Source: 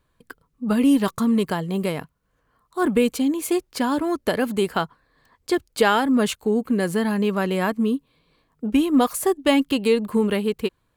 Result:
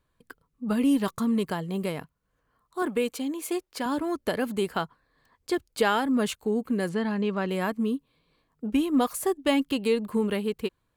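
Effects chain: 2.82–3.86 s: tone controls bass -10 dB, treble -1 dB; 6.89–7.49 s: low-pass 5.1 kHz 12 dB/octave; trim -5.5 dB

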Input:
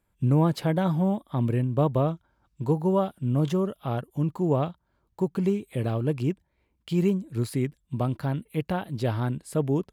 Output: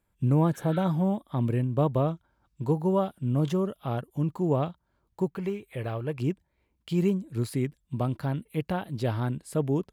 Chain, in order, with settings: 0.56–0.79 s: spectral replace 1.3–5.4 kHz both; 5.30–6.19 s: graphic EQ 125/250/2000/4000/8000 Hz -3/-9/+4/-3/-7 dB; trim -1.5 dB

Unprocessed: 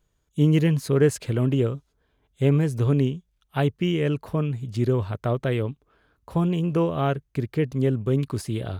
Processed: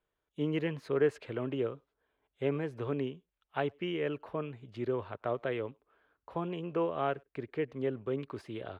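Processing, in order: three-band isolator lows -15 dB, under 320 Hz, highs -23 dB, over 3.4 kHz; speakerphone echo 100 ms, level -30 dB; trim -5.5 dB

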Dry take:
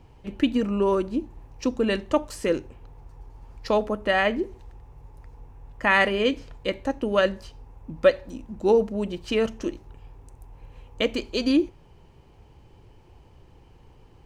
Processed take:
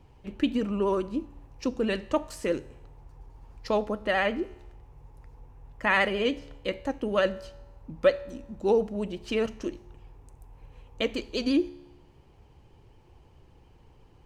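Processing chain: vibrato 14 Hz 59 cents; feedback comb 71 Hz, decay 1 s, harmonics all, mix 40%

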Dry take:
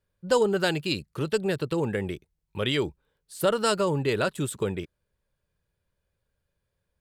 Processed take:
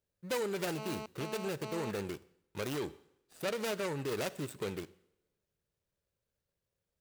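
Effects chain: median filter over 41 samples; 2.75–3.99 s: treble shelf 9.2 kHz -4.5 dB; two-slope reverb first 0.68 s, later 1.8 s, from -24 dB, DRR 17.5 dB; peak limiter -25.5 dBFS, peak gain reduction 10 dB; tilt EQ +3 dB/octave; 0.78–1.91 s: mobile phone buzz -43 dBFS

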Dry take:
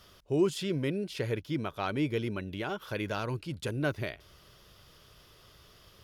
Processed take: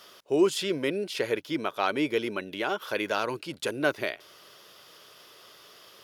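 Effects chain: high-pass 350 Hz 12 dB/octave; trim +7 dB

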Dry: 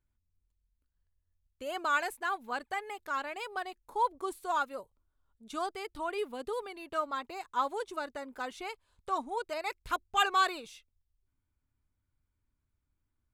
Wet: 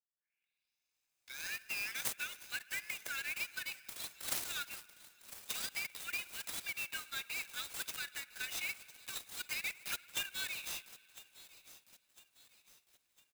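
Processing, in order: tape start-up on the opening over 2.58 s; steep high-pass 1.7 kHz 72 dB/octave; peaking EQ 3.6 kHz -4 dB; comb 0.8 ms, depth 80%; compression 12:1, threshold -45 dBFS, peak gain reduction 18.5 dB; peaking EQ 11 kHz +11 dB 0.7 oct; feedback echo behind a high-pass 1004 ms, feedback 45%, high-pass 4 kHz, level -14 dB; spring tank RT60 2.8 s, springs 55 ms, chirp 65 ms, DRR 16.5 dB; sampling jitter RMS 0.025 ms; trim +8.5 dB

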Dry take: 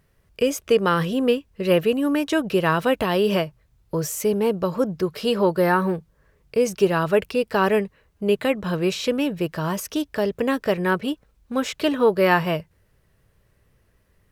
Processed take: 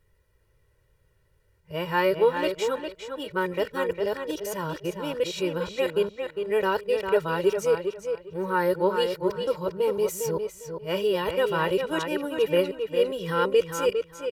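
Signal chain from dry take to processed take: reverse the whole clip; comb 2.1 ms, depth 79%; on a send: tape echo 403 ms, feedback 22%, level -5.5 dB, low-pass 4.7 kHz; on the sum: trim -7.5 dB

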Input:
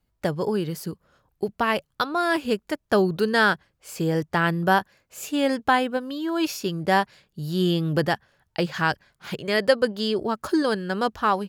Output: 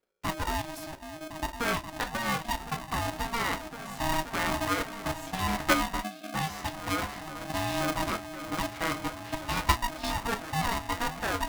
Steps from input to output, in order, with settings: peaking EQ 930 Hz +6.5 dB 2.4 oct; reverse; upward compressor, threshold -21 dBFS; reverse; delay with an opening low-pass 530 ms, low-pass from 200 Hz, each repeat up 1 oct, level -3 dB; level held to a coarse grid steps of 11 dB; spectral selection erased 6.00–6.34 s, 290–1800 Hz; on a send at -6 dB: bass shelf 140 Hz -10 dB + reverberation, pre-delay 3 ms; on the sum: polarity switched at an audio rate 470 Hz; trim -8 dB

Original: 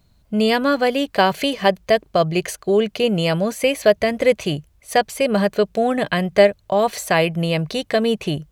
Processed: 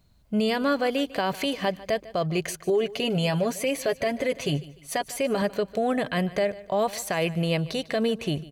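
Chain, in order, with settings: 2.69–5.42 s: comb 7.3 ms, depth 67%; peak limiter -12.5 dBFS, peak gain reduction 10.5 dB; feedback delay 149 ms, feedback 33%, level -18.5 dB; trim -4 dB

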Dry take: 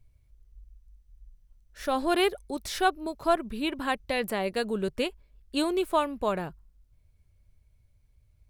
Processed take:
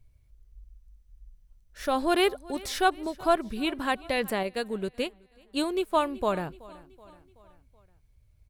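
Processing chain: feedback delay 377 ms, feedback 54%, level -21.5 dB; 4.43–6.00 s: upward expansion 1.5:1, over -40 dBFS; trim +1 dB

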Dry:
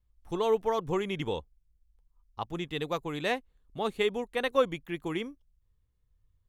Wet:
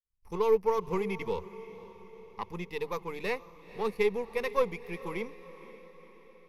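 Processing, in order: partial rectifier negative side -7 dB; hum notches 50/100/150 Hz; expander -59 dBFS; rippled EQ curve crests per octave 0.85, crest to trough 13 dB; on a send: echo that smears into a reverb 505 ms, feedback 54%, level -16 dB; on the sum: trim -1.5 dB

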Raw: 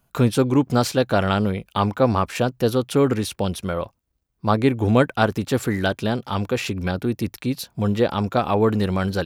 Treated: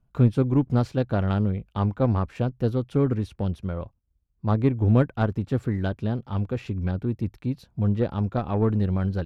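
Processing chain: Chebyshev shaper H 7 -27 dB, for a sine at -2.5 dBFS; RIAA curve playback; trim -9 dB

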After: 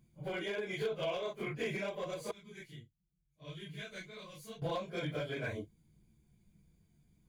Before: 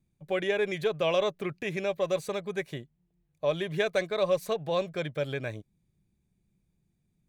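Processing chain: phase randomisation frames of 100 ms; 2.31–4.62 s: amplifier tone stack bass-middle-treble 6-0-2; compression 16:1, threshold -38 dBFS, peak gain reduction 17 dB; overload inside the chain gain 35 dB; rippled EQ curve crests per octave 1.8, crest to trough 7 dB; trim +4.5 dB

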